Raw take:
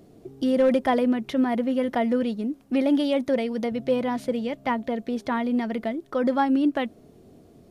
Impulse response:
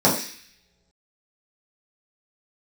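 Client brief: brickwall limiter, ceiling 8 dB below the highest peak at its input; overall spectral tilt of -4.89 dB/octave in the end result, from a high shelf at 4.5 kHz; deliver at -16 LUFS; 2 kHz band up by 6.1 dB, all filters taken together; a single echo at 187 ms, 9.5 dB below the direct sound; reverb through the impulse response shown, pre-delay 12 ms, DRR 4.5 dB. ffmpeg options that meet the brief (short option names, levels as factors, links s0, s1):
-filter_complex "[0:a]equalizer=f=2000:t=o:g=8,highshelf=f=4500:g=-6,alimiter=limit=0.119:level=0:latency=1,aecho=1:1:187:0.335,asplit=2[s0][s1];[1:a]atrim=start_sample=2205,adelay=12[s2];[s1][s2]afir=irnorm=-1:irlink=0,volume=0.0596[s3];[s0][s3]amix=inputs=2:normalize=0,volume=2.11"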